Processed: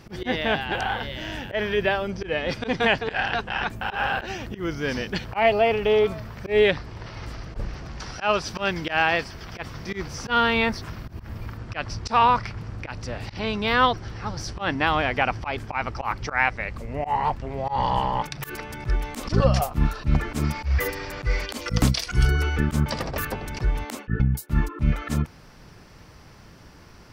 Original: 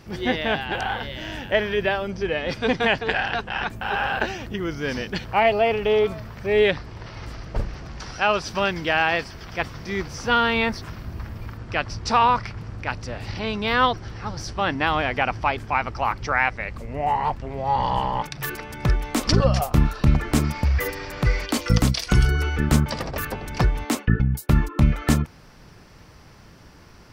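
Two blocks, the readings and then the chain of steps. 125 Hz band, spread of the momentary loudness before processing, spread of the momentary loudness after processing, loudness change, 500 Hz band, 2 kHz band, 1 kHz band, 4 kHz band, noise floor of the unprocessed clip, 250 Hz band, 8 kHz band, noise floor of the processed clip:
-3.0 dB, 12 LU, 14 LU, -1.5 dB, -1.0 dB, -1.0 dB, -1.5 dB, -1.5 dB, -47 dBFS, -3.0 dB, -3.5 dB, -48 dBFS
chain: auto swell 0.102 s

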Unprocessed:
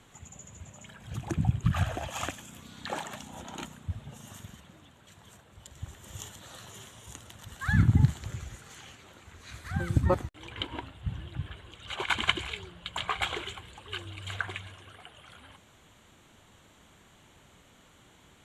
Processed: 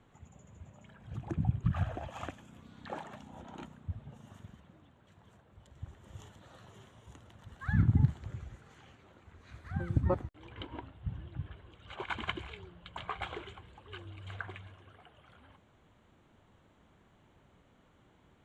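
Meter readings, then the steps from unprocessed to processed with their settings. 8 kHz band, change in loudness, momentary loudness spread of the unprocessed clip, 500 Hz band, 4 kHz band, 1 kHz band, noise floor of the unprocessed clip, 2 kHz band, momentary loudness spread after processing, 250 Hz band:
under -15 dB, -5.0 dB, 21 LU, -5.0 dB, -13.5 dB, -6.5 dB, -59 dBFS, -9.5 dB, 23 LU, -4.0 dB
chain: LPF 1100 Hz 6 dB/oct; gain -4 dB

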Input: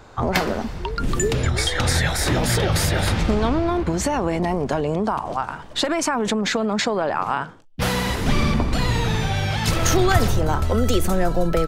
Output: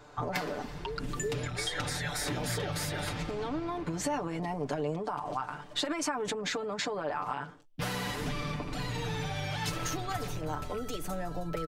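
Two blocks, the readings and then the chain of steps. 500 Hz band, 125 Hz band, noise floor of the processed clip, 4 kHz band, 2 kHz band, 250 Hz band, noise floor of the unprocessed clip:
-12.5 dB, -15.0 dB, -46 dBFS, -11.0 dB, -11.5 dB, -14.0 dB, -37 dBFS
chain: rattling part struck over -16 dBFS, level -24 dBFS; compressor, threshold -22 dBFS, peak gain reduction 11 dB; low shelf 90 Hz -7 dB; comb 6.8 ms, depth 71%; gain -8.5 dB

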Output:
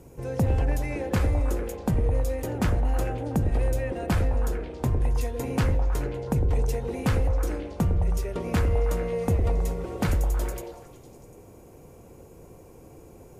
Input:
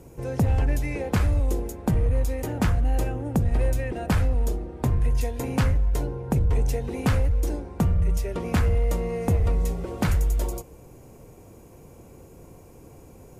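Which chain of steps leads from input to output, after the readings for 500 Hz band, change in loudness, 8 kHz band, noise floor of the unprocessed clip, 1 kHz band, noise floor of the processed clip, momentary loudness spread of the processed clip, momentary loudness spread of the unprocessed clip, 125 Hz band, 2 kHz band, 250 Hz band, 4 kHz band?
+1.0 dB, -1.5 dB, -2.0 dB, -48 dBFS, -0.5 dB, -49 dBFS, 5 LU, 5 LU, -2.0 dB, -1.5 dB, -1.5 dB, -2.0 dB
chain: delay with a stepping band-pass 0.107 s, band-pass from 410 Hz, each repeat 0.7 oct, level -1 dB; gain -2 dB

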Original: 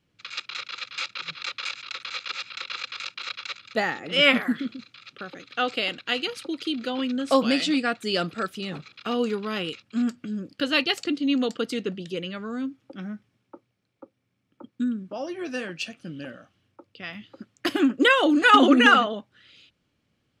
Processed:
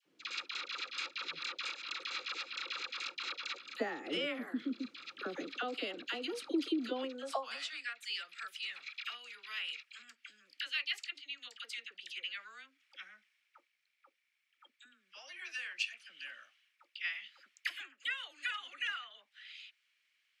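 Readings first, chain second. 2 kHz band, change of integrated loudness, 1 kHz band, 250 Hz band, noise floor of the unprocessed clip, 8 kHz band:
-14.0 dB, -15.0 dB, -20.0 dB, -19.0 dB, -74 dBFS, -10.5 dB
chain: compressor 8:1, threshold -34 dBFS, peak gain reduction 22.5 dB; dispersion lows, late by 59 ms, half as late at 1000 Hz; high-pass sweep 310 Hz -> 2100 Hz, 6.9–7.9; gain -2.5 dB

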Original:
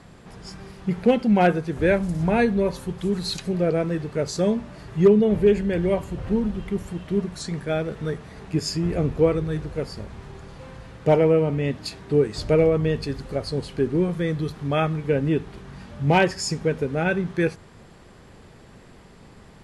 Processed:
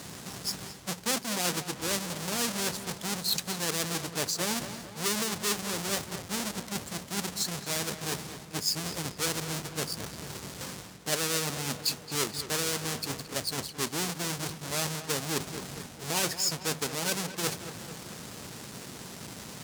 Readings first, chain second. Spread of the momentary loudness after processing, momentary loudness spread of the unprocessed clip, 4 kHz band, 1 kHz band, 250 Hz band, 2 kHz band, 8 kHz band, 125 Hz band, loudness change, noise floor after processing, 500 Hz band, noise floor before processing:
11 LU, 15 LU, +4.5 dB, -7.5 dB, -14.0 dB, -4.5 dB, +10.0 dB, -13.0 dB, -8.0 dB, -46 dBFS, -16.0 dB, -48 dBFS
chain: half-waves squared off; harmonic-percussive split harmonic -6 dB; tone controls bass +14 dB, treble +14 dB; reverse; compressor 5:1, threshold -28 dBFS, peak gain reduction 21 dB; reverse; weighting filter A; on a send: darkening echo 0.221 s, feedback 63%, low-pass 3300 Hz, level -11.5 dB; on the sum: gain +3.5 dB

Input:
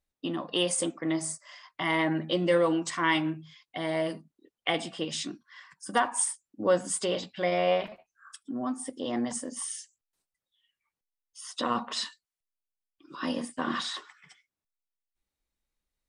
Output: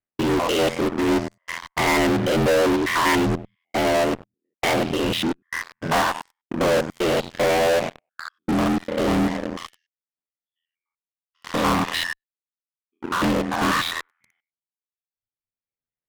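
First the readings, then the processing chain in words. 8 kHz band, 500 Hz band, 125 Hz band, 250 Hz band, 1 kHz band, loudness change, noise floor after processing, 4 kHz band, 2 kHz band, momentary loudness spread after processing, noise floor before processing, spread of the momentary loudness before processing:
-0.5 dB, +8.0 dB, +11.0 dB, +9.0 dB, +9.0 dB, +8.0 dB, under -85 dBFS, +6.5 dB, +9.0 dB, 13 LU, under -85 dBFS, 14 LU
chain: stepped spectrum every 0.1 s; HPF 83 Hz 12 dB/oct; reverb removal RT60 1.8 s; LPF 2600 Hz 24 dB/oct; ring modulator 42 Hz; in parallel at -8.5 dB: fuzz box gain 53 dB, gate -59 dBFS; on the sum: gain +2 dB

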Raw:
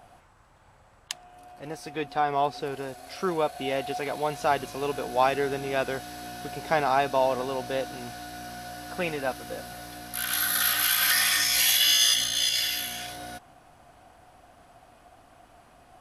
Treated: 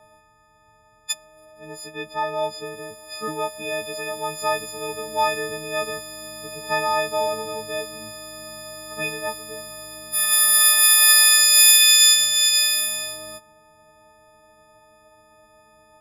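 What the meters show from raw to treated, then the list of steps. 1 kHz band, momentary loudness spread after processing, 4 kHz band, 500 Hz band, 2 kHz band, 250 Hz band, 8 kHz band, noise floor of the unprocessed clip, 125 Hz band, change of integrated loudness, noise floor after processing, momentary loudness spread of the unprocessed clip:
+0.5 dB, 24 LU, +7.0 dB, +0.5 dB, +5.5 dB, -3.0 dB, +12.0 dB, -57 dBFS, -3.5 dB, +9.0 dB, -57 dBFS, 19 LU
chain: frequency quantiser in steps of 6 st; mismatched tape noise reduction decoder only; gain -2.5 dB

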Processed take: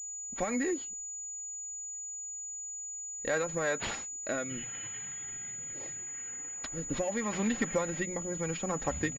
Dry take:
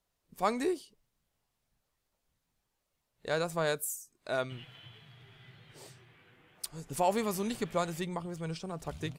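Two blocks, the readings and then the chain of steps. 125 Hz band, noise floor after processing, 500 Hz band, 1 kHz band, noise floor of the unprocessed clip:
-0.5 dB, -41 dBFS, -0.5 dB, -4.0 dB, -82 dBFS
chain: bell 1900 Hz +9 dB 0.51 oct; notches 60/120/180 Hz; comb 3.7 ms, depth 57%; sample leveller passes 1; compressor 6:1, threshold -31 dBFS, peak gain reduction 11.5 dB; rotary speaker horn 7 Hz, later 0.8 Hz, at 2.84; vibrato 0.76 Hz 27 cents; pulse-width modulation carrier 6900 Hz; gain +5 dB

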